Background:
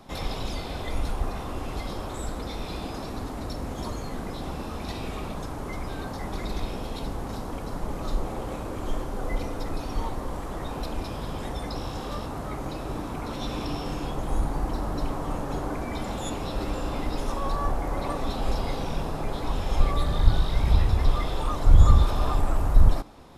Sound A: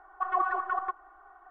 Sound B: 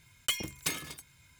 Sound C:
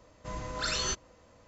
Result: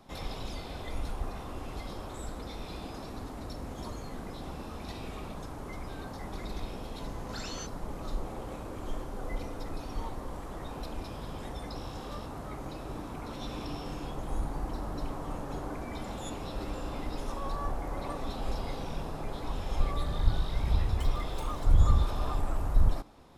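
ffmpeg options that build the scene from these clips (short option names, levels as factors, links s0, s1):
-filter_complex "[0:a]volume=0.447[s0];[2:a]alimiter=level_in=1.88:limit=0.0631:level=0:latency=1:release=275,volume=0.531[s1];[3:a]atrim=end=1.47,asetpts=PTS-STARTPTS,volume=0.299,afade=t=in:d=0.004:c=hsin,afade=t=out:st=1.466:d=0.004:c=hsin,adelay=6720[s2];[s1]atrim=end=1.39,asetpts=PTS-STARTPTS,volume=0.266,afade=t=in:d=0.004:c=hsin,afade=t=out:st=1.386:d=0.004:c=hsin,adelay=20720[s3];[s0][s2][s3]amix=inputs=3:normalize=0"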